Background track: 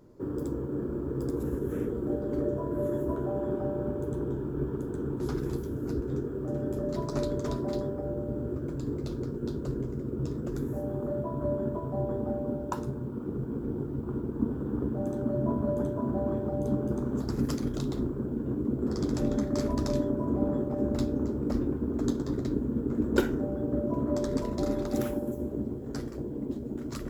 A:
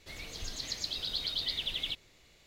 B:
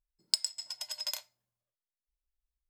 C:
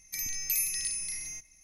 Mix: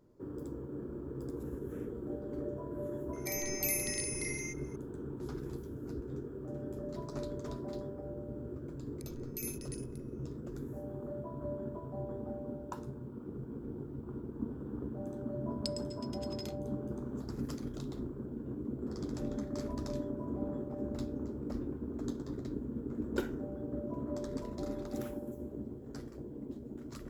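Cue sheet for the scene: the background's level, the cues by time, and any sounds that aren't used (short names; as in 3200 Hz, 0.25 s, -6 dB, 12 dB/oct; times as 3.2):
background track -9.5 dB
3.13 add C -5 dB + bell 2100 Hz +13.5 dB 0.2 oct
8.87 add C -11 dB + Wiener smoothing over 41 samples
15.32 add B -9 dB + high shelf 7900 Hz -12 dB
not used: A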